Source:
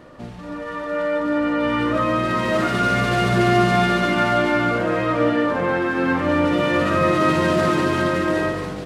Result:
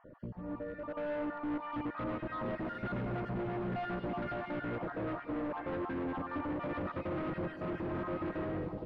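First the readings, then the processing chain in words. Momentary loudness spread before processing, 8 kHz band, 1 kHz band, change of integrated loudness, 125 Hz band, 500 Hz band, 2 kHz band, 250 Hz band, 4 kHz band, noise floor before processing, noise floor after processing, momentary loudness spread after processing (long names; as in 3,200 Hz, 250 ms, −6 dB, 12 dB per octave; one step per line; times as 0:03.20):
7 LU, below −40 dB, −19.5 dB, −18.5 dB, −16.5 dB, −18.0 dB, −22.0 dB, −16.5 dB, −27.5 dB, −33 dBFS, −48 dBFS, 2 LU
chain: time-frequency cells dropped at random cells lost 35%
parametric band 3,600 Hz −14.5 dB 2.7 octaves
brickwall limiter −17 dBFS, peak gain reduction 9 dB
gain into a clipping stage and back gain 28.5 dB
high-frequency loss of the air 360 metres
echo with a time of its own for lows and highs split 940 Hz, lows 300 ms, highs 102 ms, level −10.5 dB
level −5.5 dB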